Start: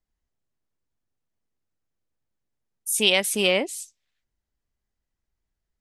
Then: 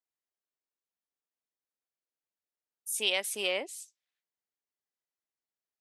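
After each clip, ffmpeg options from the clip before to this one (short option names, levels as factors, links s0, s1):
-af "highpass=410,volume=0.355"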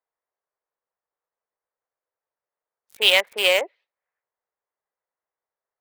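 -filter_complex "[0:a]equalizer=f=250:t=o:w=1:g=-9,equalizer=f=500:t=o:w=1:g=11,equalizer=f=1000:t=o:w=1:g=8,equalizer=f=2000:t=o:w=1:g=10,equalizer=f=4000:t=o:w=1:g=11,equalizer=f=8000:t=o:w=1:g=-6,acrossover=split=290|1600[s0][s1][s2];[s2]acrusher=bits=3:mix=0:aa=0.5[s3];[s0][s1][s3]amix=inputs=3:normalize=0,volume=1.19"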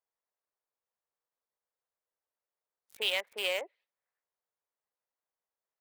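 -af "acompressor=threshold=0.0158:ratio=1.5,volume=0.501"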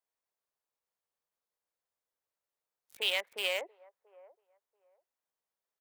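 -filter_complex "[0:a]acrossover=split=460|1200[s0][s1][s2];[s0]alimiter=level_in=12.6:limit=0.0631:level=0:latency=1,volume=0.0794[s3];[s1]aecho=1:1:685|1370:0.141|0.0268[s4];[s3][s4][s2]amix=inputs=3:normalize=0"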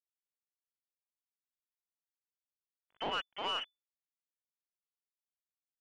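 -af "aeval=exprs='val(0)*gte(abs(val(0)),0.00794)':c=same,lowpass=f=3000:t=q:w=0.5098,lowpass=f=3000:t=q:w=0.6013,lowpass=f=3000:t=q:w=0.9,lowpass=f=3000:t=q:w=2.563,afreqshift=-3500,aeval=exprs='(tanh(22.4*val(0)+0.15)-tanh(0.15))/22.4':c=same"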